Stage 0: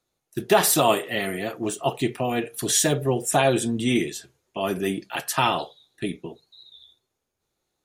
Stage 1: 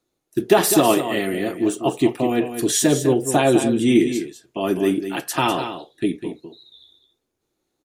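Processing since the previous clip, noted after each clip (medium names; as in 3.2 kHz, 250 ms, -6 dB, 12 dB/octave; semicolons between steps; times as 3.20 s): peaking EQ 310 Hz +10 dB 0.87 oct; on a send: delay 201 ms -9.5 dB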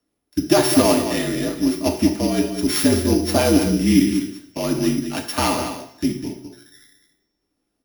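sorted samples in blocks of 8 samples; frequency shift -48 Hz; two-slope reverb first 0.61 s, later 1.6 s, from -20 dB, DRR 4 dB; trim -1 dB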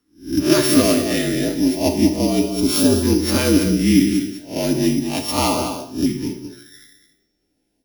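reverse spectral sustain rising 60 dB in 0.34 s; in parallel at -3 dB: compression, threshold -22 dBFS, peak gain reduction 13 dB; on the sum: LFO notch saw up 0.33 Hz 610–2100 Hz; trim -1 dB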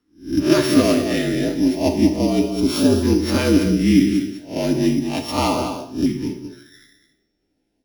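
treble shelf 6.6 kHz -11.5 dB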